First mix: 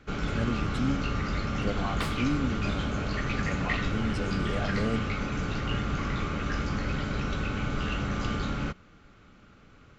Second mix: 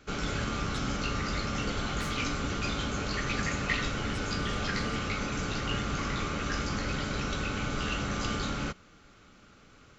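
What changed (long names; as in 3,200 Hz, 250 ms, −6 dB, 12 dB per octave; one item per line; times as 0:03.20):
speech −11.0 dB
second sound −11.5 dB
master: add bass and treble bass −4 dB, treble +9 dB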